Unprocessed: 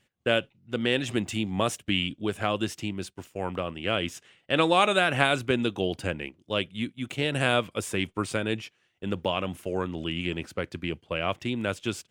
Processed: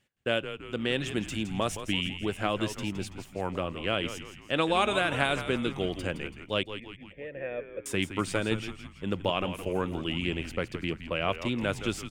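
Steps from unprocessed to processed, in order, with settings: 6.63–7.86 s: cascade formant filter e; frequency-shifting echo 166 ms, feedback 49%, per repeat -97 Hz, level -10.5 dB; gain riding within 3 dB 2 s; trim -3 dB

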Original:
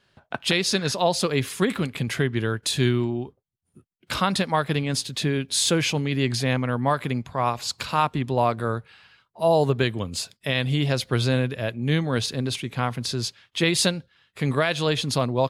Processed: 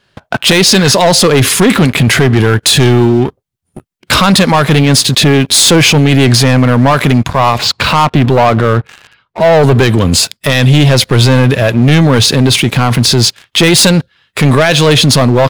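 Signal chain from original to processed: 7.58–9.63 s: low-pass 3.6 kHz 12 dB/octave; waveshaping leveller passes 3; loudness maximiser +16 dB; trim -1 dB

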